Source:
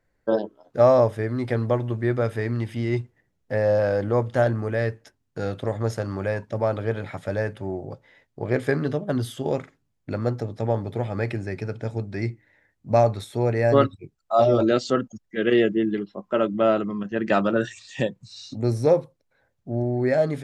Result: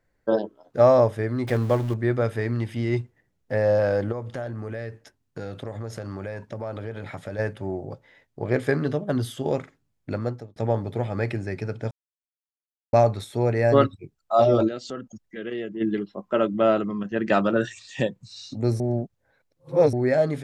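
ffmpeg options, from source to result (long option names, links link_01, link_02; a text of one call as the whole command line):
ffmpeg -i in.wav -filter_complex "[0:a]asettb=1/sr,asplit=3[link_01][link_02][link_03];[link_01]atrim=end=1.474[link_04];[link_02]atrim=start=1.47:end=1.94,asetpts=PTS-STARTPTS,afade=type=in:duration=0.004:curve=qsin,afade=type=out:start_time=0.466:duration=0.004:curve=qsin,aeval=exprs='val(0)+0.5*0.0211*sgn(val(0))':channel_layout=same[link_05];[link_03]atrim=start=1.936[link_06];[link_04][link_05]acrossfade=duration=0.004:curve1=hsin:curve2=qsin[link_07];[link_07][link_06]acrossfade=duration=0.004:curve1=qsin:curve2=hsin,asplit=3[link_08][link_09][link_10];[link_08]afade=type=out:start_time=4.11:duration=0.02[link_11];[link_09]acompressor=threshold=-29dB:ratio=5:attack=3.2:release=140:knee=1:detection=peak,afade=type=in:start_time=4.11:duration=0.02,afade=type=out:start_time=7.38:duration=0.02[link_12];[link_10]afade=type=in:start_time=7.38:duration=0.02[link_13];[link_11][link_12][link_13]amix=inputs=3:normalize=0,asplit=3[link_14][link_15][link_16];[link_14]afade=type=out:start_time=14.67:duration=0.02[link_17];[link_15]acompressor=threshold=-38dB:ratio=2:attack=3.2:release=140:knee=1:detection=peak,afade=type=in:start_time=14.67:duration=0.02,afade=type=out:start_time=15.8:duration=0.02[link_18];[link_16]afade=type=in:start_time=15.8:duration=0.02[link_19];[link_17][link_18][link_19]amix=inputs=3:normalize=0,asplit=6[link_20][link_21][link_22][link_23][link_24][link_25];[link_20]atrim=end=10.56,asetpts=PTS-STARTPTS,afade=type=out:start_time=10.13:duration=0.43[link_26];[link_21]atrim=start=10.56:end=11.91,asetpts=PTS-STARTPTS,afade=type=in:duration=0.004:curve=hsin,afade=type=out:start_time=1.346:duration=0.004:curve=hsin[link_27];[link_22]atrim=start=11.91:end=12.93,asetpts=PTS-STARTPTS,volume=0[link_28];[link_23]atrim=start=12.93:end=18.802,asetpts=PTS-STARTPTS,afade=type=in:duration=0.004:curve=hsin[link_29];[link_24]atrim=start=18.798:end=19.932,asetpts=PTS-STARTPTS,areverse[link_30];[link_25]atrim=start=19.928[link_31];[link_26][link_27][link_28][link_29]concat=n=4:v=0:a=1[link_32];[link_32][link_30]acrossfade=duration=0.004:curve1=hsin:curve2=hsin[link_33];[link_33][link_31]acrossfade=duration=0.004:curve1=hsin:curve2=hsin" out.wav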